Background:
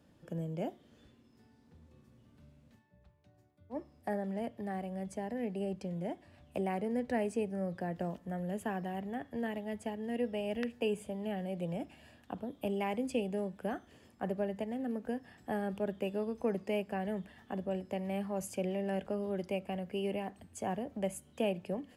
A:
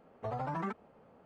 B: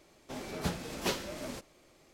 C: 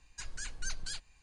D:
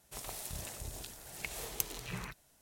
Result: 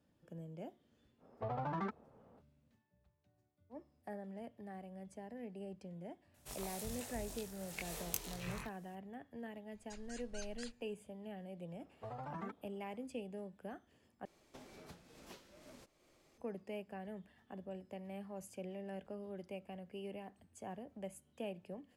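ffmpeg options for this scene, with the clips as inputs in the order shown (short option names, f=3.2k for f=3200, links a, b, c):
-filter_complex "[1:a]asplit=2[a][b];[0:a]volume=-11dB[c];[a]adynamicsmooth=sensitivity=7:basefreq=1.8k[d];[4:a]flanger=delay=20:depth=3.8:speed=1.2[e];[2:a]acompressor=threshold=-45dB:ratio=10:attack=17:release=795:knee=1:detection=peak[f];[c]asplit=2[g][h];[g]atrim=end=14.254[i];[f]atrim=end=2.13,asetpts=PTS-STARTPTS,volume=-7.5dB[j];[h]atrim=start=16.376[k];[d]atrim=end=1.25,asetpts=PTS-STARTPTS,volume=-2.5dB,afade=t=in:d=0.05,afade=t=out:st=1.2:d=0.05,adelay=1180[l];[e]atrim=end=2.61,asetpts=PTS-STARTPTS,volume=-1dB,afade=t=in:d=0.004:c=hsin,afade=t=out:st=2.606:d=0.004:c=hsin,adelay=279594S[m];[3:a]atrim=end=1.22,asetpts=PTS-STARTPTS,volume=-11.5dB,afade=t=in:d=0.004:c=hsin,afade=t=out:st=1.216:d=0.004:c=hsin,adelay=9720[n];[b]atrim=end=1.25,asetpts=PTS-STARTPTS,volume=-9.5dB,afade=t=in:d=0.004:c=hsin,afade=t=out:st=1.246:d=0.004:c=hsin,adelay=11790[o];[i][j]acrossfade=d=0.004:c1=hsin:c2=hsin[p];[p][k]acrossfade=d=0.004:c1=hsin:c2=hsin[q];[q][l][m][n][o]amix=inputs=5:normalize=0"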